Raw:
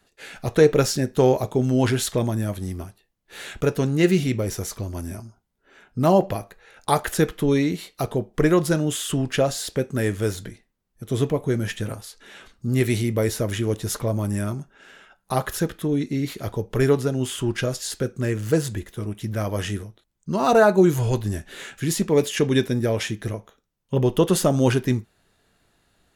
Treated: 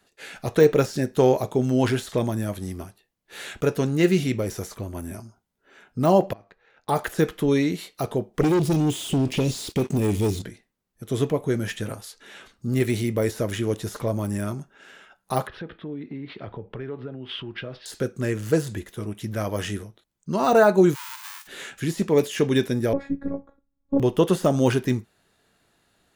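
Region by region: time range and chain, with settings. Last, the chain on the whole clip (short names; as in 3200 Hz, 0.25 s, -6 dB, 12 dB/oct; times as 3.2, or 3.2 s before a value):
4.74–5.14 bell 5100 Hz -13 dB 0.46 oct + notch 6900 Hz, Q 26
6.33–6.89 G.711 law mismatch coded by A + air absorption 180 m + compressor 12:1, threshold -42 dBFS
8.41–10.42 inverse Chebyshev band-stop 620–1500 Hz + sample leveller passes 3 + compressor 5:1, threshold -17 dBFS
15.47–17.86 inverse Chebyshev low-pass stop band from 6700 Hz + compressor 10:1, threshold -29 dBFS + three-band expander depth 70%
20.94–21.46 spectral whitening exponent 0.1 + compressor 4:1, threshold -23 dBFS + brick-wall FIR high-pass 820 Hz
22.93–24 running mean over 15 samples + tilt -3.5 dB/oct + robotiser 278 Hz
whole clip: de-esser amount 65%; low shelf 73 Hz -11 dB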